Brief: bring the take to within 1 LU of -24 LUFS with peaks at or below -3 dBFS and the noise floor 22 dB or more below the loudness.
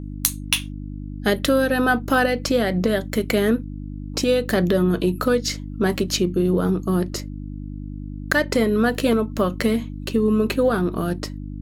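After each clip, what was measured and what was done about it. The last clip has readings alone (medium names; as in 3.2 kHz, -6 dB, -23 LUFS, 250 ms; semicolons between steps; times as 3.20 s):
hum 50 Hz; highest harmonic 300 Hz; hum level -29 dBFS; loudness -21.5 LUFS; peak level -1.5 dBFS; loudness target -24.0 LUFS
-> de-hum 50 Hz, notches 6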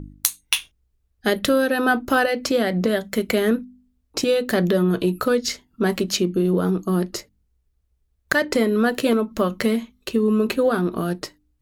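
hum not found; loudness -21.5 LUFS; peak level -1.5 dBFS; loudness target -24.0 LUFS
-> trim -2.5 dB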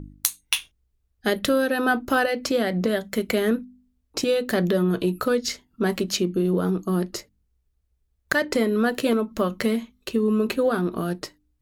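loudness -24.0 LUFS; peak level -4.0 dBFS; noise floor -71 dBFS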